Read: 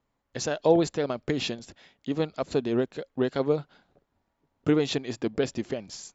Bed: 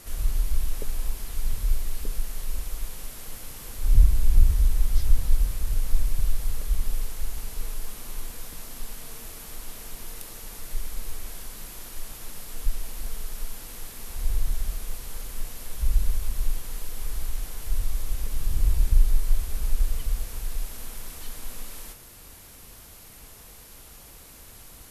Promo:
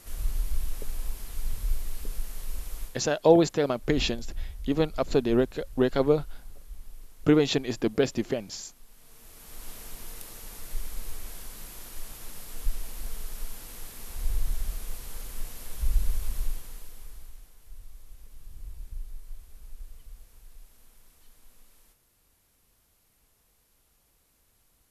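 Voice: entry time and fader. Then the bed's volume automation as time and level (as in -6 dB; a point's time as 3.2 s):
2.60 s, +2.5 dB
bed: 2.83 s -4.5 dB
3.04 s -18.5 dB
8.86 s -18.5 dB
9.67 s -3 dB
16.36 s -3 dB
17.55 s -20 dB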